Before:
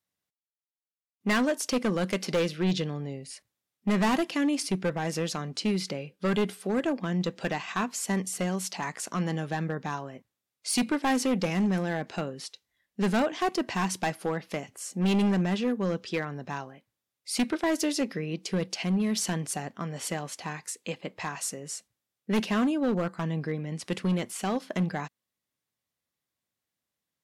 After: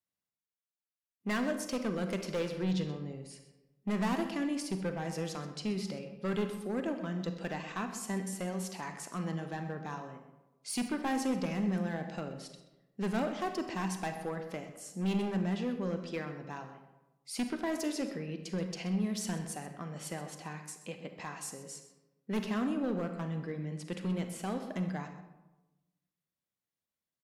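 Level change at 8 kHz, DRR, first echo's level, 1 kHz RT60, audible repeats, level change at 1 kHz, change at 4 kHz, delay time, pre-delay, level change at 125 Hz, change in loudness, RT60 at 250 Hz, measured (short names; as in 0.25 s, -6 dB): -9.0 dB, 6.5 dB, -15.5 dB, 1.0 s, 1, -7.0 dB, -9.5 dB, 0.128 s, 34 ms, -6.0 dB, -6.5 dB, 1.2 s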